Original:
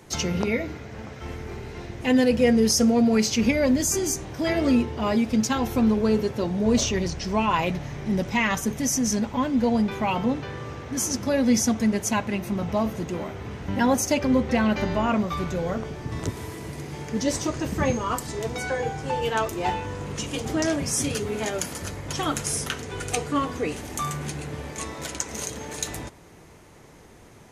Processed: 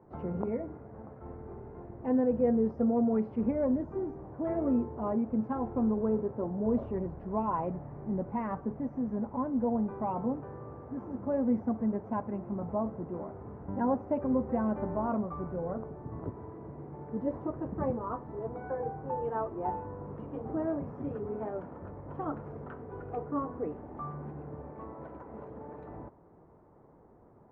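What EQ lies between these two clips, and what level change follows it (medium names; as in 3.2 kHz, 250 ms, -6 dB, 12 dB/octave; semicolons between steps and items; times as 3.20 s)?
low-pass 1.1 kHz 24 dB/octave; bass shelf 130 Hz -6.5 dB; -6.5 dB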